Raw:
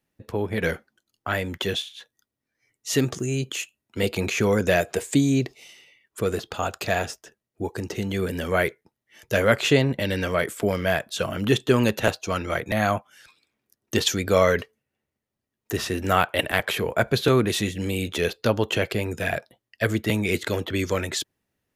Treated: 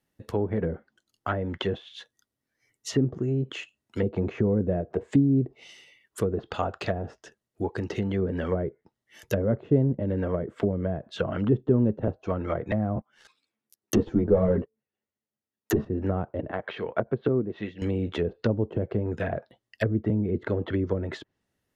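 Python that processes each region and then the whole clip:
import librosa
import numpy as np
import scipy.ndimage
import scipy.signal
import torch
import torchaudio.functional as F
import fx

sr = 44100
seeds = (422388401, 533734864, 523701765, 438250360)

y = fx.chain(x, sr, fx.highpass(hz=120.0, slope=12),
    fx.leveller(passes=3),
    fx.ensemble(), at=(12.96, 15.85))
y = fx.chain(y, sr, fx.highpass(hz=210.0, slope=6),
    fx.air_absorb(metres=220.0),
    fx.upward_expand(threshold_db=-35.0, expansion=1.5), at=(16.51, 17.82))
y = fx.env_lowpass_down(y, sr, base_hz=380.0, full_db=-20.0)
y = fx.notch(y, sr, hz=2400.0, q=13.0)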